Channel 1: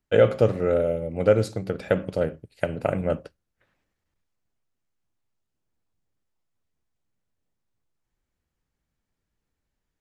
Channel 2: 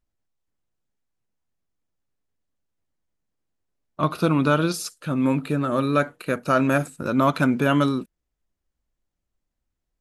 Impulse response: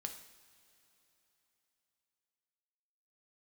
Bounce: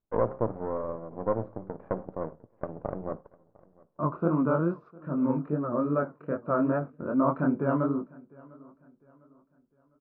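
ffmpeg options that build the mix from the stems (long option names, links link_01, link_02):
-filter_complex "[0:a]aeval=exprs='max(val(0),0)':channel_layout=same,volume=-5dB,asplit=3[link_01][link_02][link_03];[link_02]volume=-18.5dB[link_04];[link_03]volume=-24dB[link_05];[1:a]bandreject=frequency=790:width=12,flanger=delay=18.5:depth=7.8:speed=2.5,volume=-1.5dB,asplit=2[link_06][link_07];[link_07]volume=-24dB[link_08];[2:a]atrim=start_sample=2205[link_09];[link_04][link_09]afir=irnorm=-1:irlink=0[link_10];[link_05][link_08]amix=inputs=2:normalize=0,aecho=0:1:703|1406|2109|2812|3515:1|0.38|0.144|0.0549|0.0209[link_11];[link_01][link_06][link_10][link_11]amix=inputs=4:normalize=0,lowpass=frequency=1200:width=0.5412,lowpass=frequency=1200:width=1.3066,lowshelf=frequency=74:gain=-10.5"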